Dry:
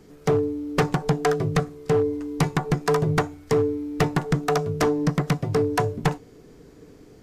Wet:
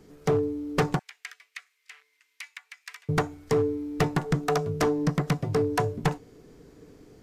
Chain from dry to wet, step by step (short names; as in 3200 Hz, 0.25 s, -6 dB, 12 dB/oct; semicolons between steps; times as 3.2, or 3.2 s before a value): 0.99–3.09 ladder high-pass 1900 Hz, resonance 55%; gain -3 dB